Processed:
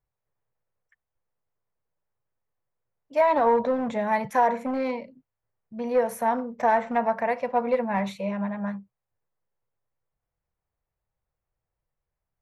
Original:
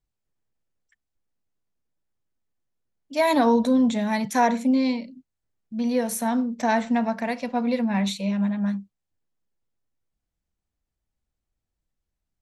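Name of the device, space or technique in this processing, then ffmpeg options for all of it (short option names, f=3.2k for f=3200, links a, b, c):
limiter into clipper: -filter_complex "[0:a]asettb=1/sr,asplit=3[a][b][c];[a]atrim=end=3.214[d];[b]atrim=start=3.21:end=3.86,asetpts=PTS-STARTPTS,afade=t=in:d=0.004:c=qsin,afade=t=out:st=0.646:d=0.004:c=qsin,lowpass=f=5.4k:w=0.5412,lowpass=f=5.4k:w=1.3066[e];[c]atrim=start=3.856[f];[d][e]acrossfade=d=0.004:c1=hsin:c2=qsin[g];[g][f]acrossfade=d=0.004:c1=qsin:c2=hsin,alimiter=limit=-14dB:level=0:latency=1:release=139,asoftclip=type=hard:threshold=-17.5dB,equalizer=f=125:t=o:w=1:g=8,equalizer=f=250:t=o:w=1:g=-8,equalizer=f=500:t=o:w=1:g=9,equalizer=f=1k:t=o:w=1:g=8,equalizer=f=2k:t=o:w=1:g=5,equalizer=f=4k:t=o:w=1:g=-8,equalizer=f=8k:t=o:w=1:g=-9,volume=-4.5dB"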